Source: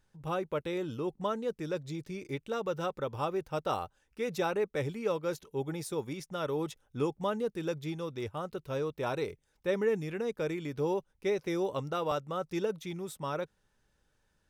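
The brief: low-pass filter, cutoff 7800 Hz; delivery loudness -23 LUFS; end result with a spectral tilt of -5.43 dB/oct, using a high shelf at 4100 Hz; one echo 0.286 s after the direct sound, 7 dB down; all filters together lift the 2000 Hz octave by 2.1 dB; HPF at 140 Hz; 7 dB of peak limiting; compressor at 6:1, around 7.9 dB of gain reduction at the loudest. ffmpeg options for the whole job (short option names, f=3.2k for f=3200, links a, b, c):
-af "highpass=140,lowpass=7.8k,equalizer=f=2k:t=o:g=4.5,highshelf=f=4.1k:g=-8,acompressor=threshold=-34dB:ratio=6,alimiter=level_in=6.5dB:limit=-24dB:level=0:latency=1,volume=-6.5dB,aecho=1:1:286:0.447,volume=17.5dB"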